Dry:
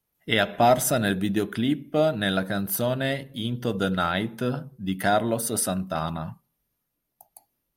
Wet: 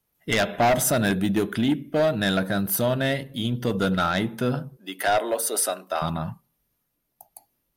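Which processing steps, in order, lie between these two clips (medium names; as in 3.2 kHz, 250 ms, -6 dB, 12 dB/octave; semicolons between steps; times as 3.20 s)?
4.77–6.02 s: high-pass 370 Hz 24 dB/octave; in parallel at -5 dB: sine folder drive 9 dB, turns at -7.5 dBFS; on the sum: trim -7.5 dB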